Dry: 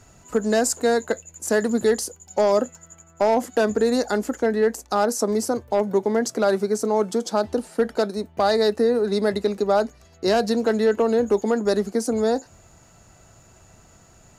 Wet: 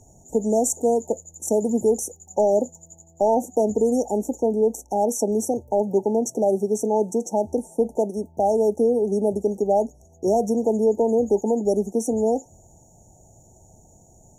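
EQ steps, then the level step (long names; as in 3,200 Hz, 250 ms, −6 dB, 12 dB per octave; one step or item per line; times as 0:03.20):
linear-phase brick-wall band-stop 940–5,500 Hz
0.0 dB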